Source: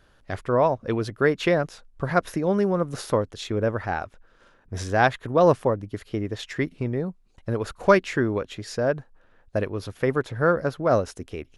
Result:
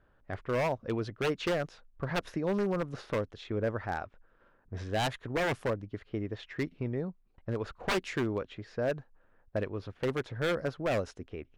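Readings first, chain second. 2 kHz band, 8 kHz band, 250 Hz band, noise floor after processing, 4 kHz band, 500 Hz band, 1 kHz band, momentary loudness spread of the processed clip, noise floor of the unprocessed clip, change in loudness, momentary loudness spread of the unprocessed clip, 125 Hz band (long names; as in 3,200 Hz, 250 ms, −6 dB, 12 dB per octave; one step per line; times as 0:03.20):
−8.0 dB, −8.0 dB, −8.5 dB, −66 dBFS, −3.5 dB, −10.0 dB, −11.0 dB, 10 LU, −59 dBFS, −9.5 dB, 13 LU, −8.0 dB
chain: low-pass that shuts in the quiet parts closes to 1,700 Hz, open at −15.5 dBFS
wave folding −16 dBFS
level −7 dB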